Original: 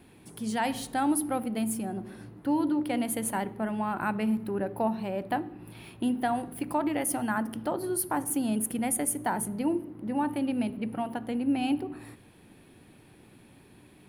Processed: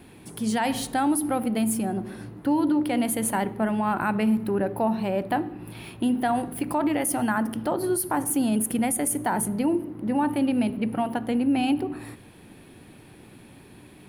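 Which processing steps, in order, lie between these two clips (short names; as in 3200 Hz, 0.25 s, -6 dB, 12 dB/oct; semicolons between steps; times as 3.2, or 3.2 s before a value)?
limiter -22 dBFS, peak gain reduction 6 dB; gain +6.5 dB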